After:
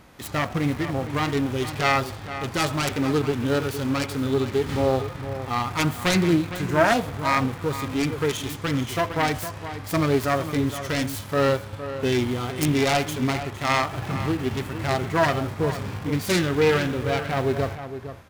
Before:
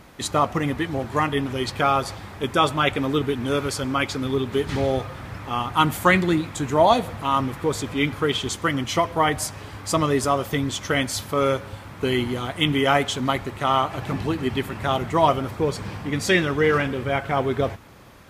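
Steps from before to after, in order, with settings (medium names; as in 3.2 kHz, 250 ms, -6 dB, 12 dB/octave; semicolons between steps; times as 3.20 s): self-modulated delay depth 0.46 ms; in parallel at -11 dB: bit crusher 5-bit; on the sum: echo from a far wall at 79 m, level -11 dB; harmonic-percussive split percussive -9 dB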